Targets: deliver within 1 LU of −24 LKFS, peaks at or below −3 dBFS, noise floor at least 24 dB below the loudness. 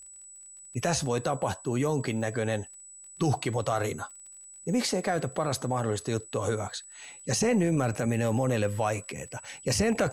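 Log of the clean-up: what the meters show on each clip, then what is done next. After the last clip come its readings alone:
crackle rate 30 per second; interfering tone 7,900 Hz; level of the tone −46 dBFS; integrated loudness −29.5 LKFS; sample peak −15.0 dBFS; target loudness −24.0 LKFS
→ click removal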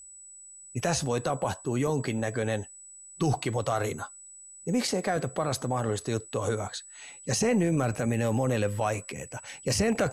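crackle rate 0.099 per second; interfering tone 7,900 Hz; level of the tone −46 dBFS
→ notch filter 7,900 Hz, Q 30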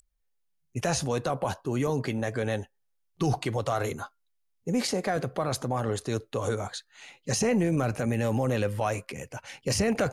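interfering tone none found; integrated loudness −29.0 LKFS; sample peak −15.0 dBFS; target loudness −24.0 LKFS
→ level +5 dB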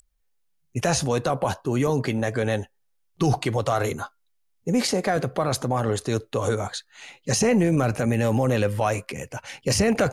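integrated loudness −24.0 LKFS; sample peak −10.0 dBFS; background noise floor −69 dBFS

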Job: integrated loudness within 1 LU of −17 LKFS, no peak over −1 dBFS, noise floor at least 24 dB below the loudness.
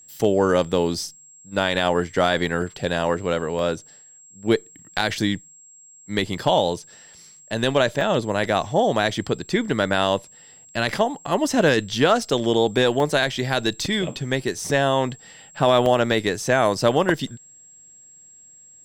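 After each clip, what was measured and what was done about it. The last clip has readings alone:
number of dropouts 8; longest dropout 1.4 ms; interfering tone 7,600 Hz; level of the tone −46 dBFS; integrated loudness −22.0 LKFS; sample peak −4.5 dBFS; target loudness −17.0 LKFS
→ repair the gap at 0:00.13/0:02.62/0:03.59/0:08.01/0:12.22/0:13.00/0:14.60/0:15.86, 1.4 ms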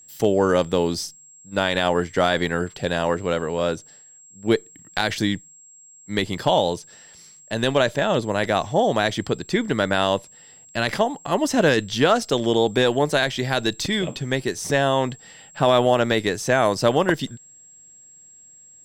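number of dropouts 0; interfering tone 7,600 Hz; level of the tone −46 dBFS
→ notch filter 7,600 Hz, Q 30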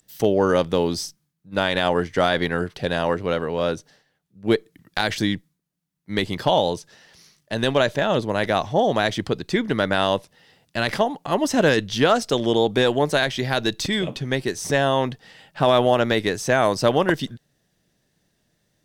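interfering tone none found; integrated loudness −22.0 LKFS; sample peak −4.5 dBFS; target loudness −17.0 LKFS
→ level +5 dB
brickwall limiter −1 dBFS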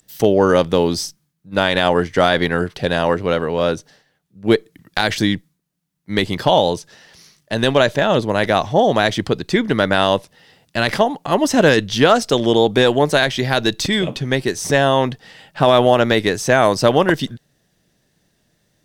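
integrated loudness −17.0 LKFS; sample peak −1.0 dBFS; background noise floor −67 dBFS

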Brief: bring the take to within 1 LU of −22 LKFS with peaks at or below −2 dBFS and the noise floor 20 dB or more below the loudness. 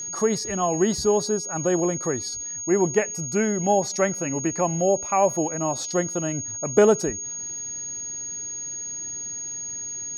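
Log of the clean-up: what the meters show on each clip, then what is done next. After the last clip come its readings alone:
crackle rate 30 per second; interfering tone 6,600 Hz; level of the tone −30 dBFS; integrated loudness −24.0 LKFS; sample peak −6.0 dBFS; target loudness −22.0 LKFS
→ click removal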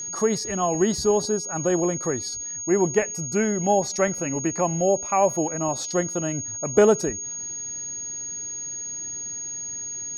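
crackle rate 0.20 per second; interfering tone 6,600 Hz; level of the tone −30 dBFS
→ notch filter 6,600 Hz, Q 30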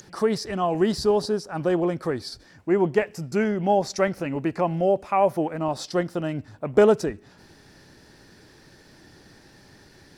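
interfering tone none found; integrated loudness −24.0 LKFS; sample peak −6.0 dBFS; target loudness −22.0 LKFS
→ level +2 dB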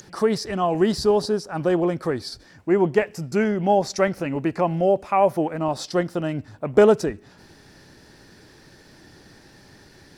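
integrated loudness −22.0 LKFS; sample peak −4.0 dBFS; background noise floor −51 dBFS

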